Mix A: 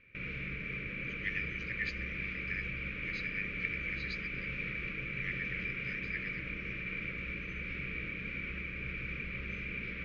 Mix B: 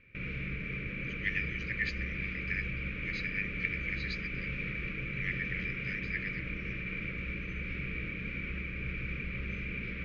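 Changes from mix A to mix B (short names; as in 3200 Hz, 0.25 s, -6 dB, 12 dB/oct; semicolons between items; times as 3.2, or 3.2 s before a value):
speech +3.5 dB; master: add low shelf 310 Hz +5.5 dB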